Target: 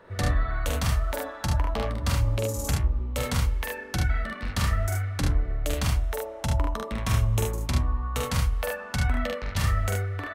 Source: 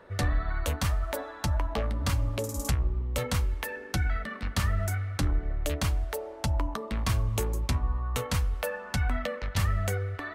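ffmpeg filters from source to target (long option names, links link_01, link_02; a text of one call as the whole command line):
ffmpeg -i in.wav -filter_complex "[0:a]asettb=1/sr,asplit=3[link_01][link_02][link_03];[link_01]atrim=end=5.944[link_04];[link_02]atrim=start=5.94:end=7.5,asetpts=PTS-STARTPTS,afade=type=in:duration=0.004:curve=qsin,afade=type=out:start_time=1.556:duration=0.004:curve=qsin,bandreject=frequency=4600:width=8.6[link_05];[link_03]atrim=start=7.496[link_06];[link_04][link_05]acrossfade=duration=0.004:curve1=hsin:curve2=qsin[link_07];[link_07][link_06]acrossfade=duration=0.004:curve1=qsin:curve2=hsin,aecho=1:1:45|74:0.708|0.596" out.wav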